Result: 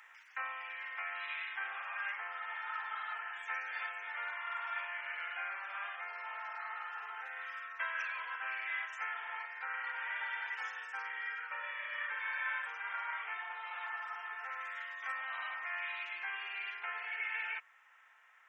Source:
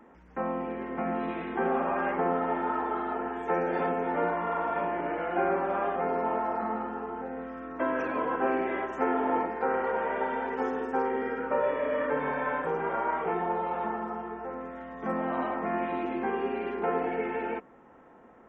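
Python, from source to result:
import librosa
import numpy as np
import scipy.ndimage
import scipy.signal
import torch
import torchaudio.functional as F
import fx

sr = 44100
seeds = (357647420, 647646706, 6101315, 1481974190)

y = fx.rider(x, sr, range_db=10, speed_s=0.5)
y = fx.ladder_highpass(y, sr, hz=1600.0, resonance_pct=25)
y = y * 10.0 ** (8.5 / 20.0)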